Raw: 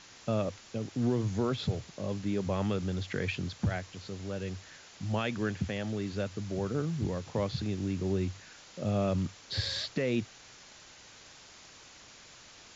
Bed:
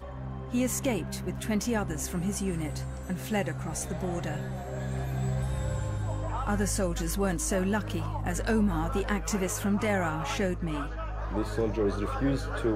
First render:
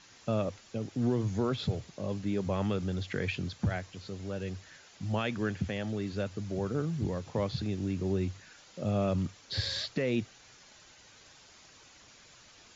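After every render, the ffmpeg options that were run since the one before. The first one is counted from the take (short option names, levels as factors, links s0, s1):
-af "afftdn=nr=6:nf=-54"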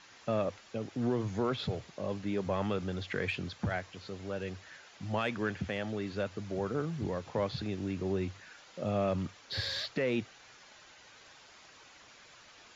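-filter_complex "[0:a]asplit=2[s0][s1];[s1]highpass=f=720:p=1,volume=2.82,asoftclip=type=tanh:threshold=0.106[s2];[s0][s2]amix=inputs=2:normalize=0,lowpass=f=2300:p=1,volume=0.501"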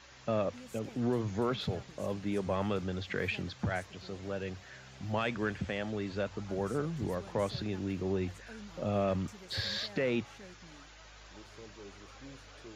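-filter_complex "[1:a]volume=0.0708[s0];[0:a][s0]amix=inputs=2:normalize=0"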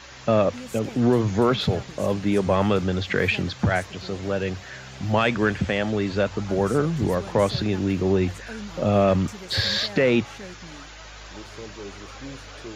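-af "volume=3.98"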